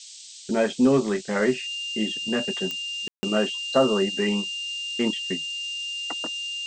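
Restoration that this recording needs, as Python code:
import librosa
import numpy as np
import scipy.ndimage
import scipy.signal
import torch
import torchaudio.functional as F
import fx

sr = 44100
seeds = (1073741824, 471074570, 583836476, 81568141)

y = fx.fix_declick_ar(x, sr, threshold=10.0)
y = fx.notch(y, sr, hz=2800.0, q=30.0)
y = fx.fix_ambience(y, sr, seeds[0], print_start_s=0.0, print_end_s=0.5, start_s=3.08, end_s=3.23)
y = fx.noise_reduce(y, sr, print_start_s=0.0, print_end_s=0.5, reduce_db=26.0)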